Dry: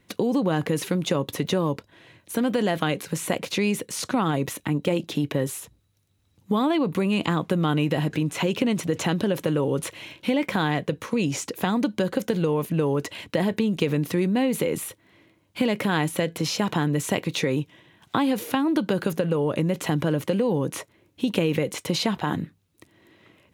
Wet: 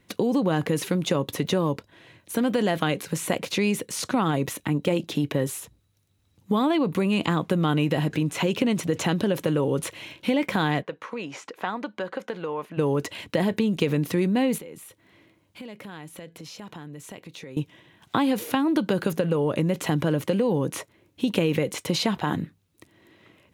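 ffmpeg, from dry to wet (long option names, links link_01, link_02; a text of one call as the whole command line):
ffmpeg -i in.wav -filter_complex "[0:a]asplit=3[link_01][link_02][link_03];[link_01]afade=type=out:start_time=10.81:duration=0.02[link_04];[link_02]bandpass=frequency=1200:width_type=q:width=0.85,afade=type=in:start_time=10.81:duration=0.02,afade=type=out:start_time=12.77:duration=0.02[link_05];[link_03]afade=type=in:start_time=12.77:duration=0.02[link_06];[link_04][link_05][link_06]amix=inputs=3:normalize=0,asettb=1/sr,asplit=3[link_07][link_08][link_09];[link_07]atrim=end=14.584[link_10];[link_08]atrim=start=14.58:end=17.57,asetpts=PTS-STARTPTS,afade=type=in:duration=0.004:curve=qsin,afade=type=out:start_time=2.986:duration=0.004:curve=qsin,acompressor=threshold=-51dB:ratio=2:attack=3.2:release=140:knee=1:detection=peak[link_11];[link_09]atrim=start=17.566[link_12];[link_10][link_11]acrossfade=duration=0.004:curve1=hsin:curve2=qsin[link_13];[link_13][link_12]acrossfade=duration=0.004:curve1=qsin:curve2=hsin" out.wav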